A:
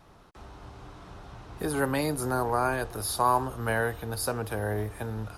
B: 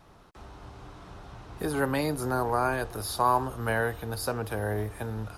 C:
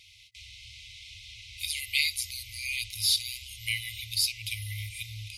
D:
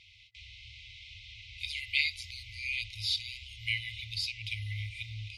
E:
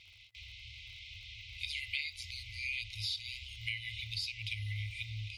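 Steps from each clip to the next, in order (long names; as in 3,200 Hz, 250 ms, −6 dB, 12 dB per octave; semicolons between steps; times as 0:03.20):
dynamic equaliser 9,600 Hz, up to −5 dB, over −46 dBFS, Q 1.2
meter weighting curve D; brick-wall band-stop 110–2,000 Hz; every ending faded ahead of time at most 400 dB per second; level +3.5 dB
low-pass filter 3,400 Hz 12 dB per octave
downward compressor 6 to 1, threshold −34 dBFS, peak gain reduction 11 dB; surface crackle 60 per second −53 dBFS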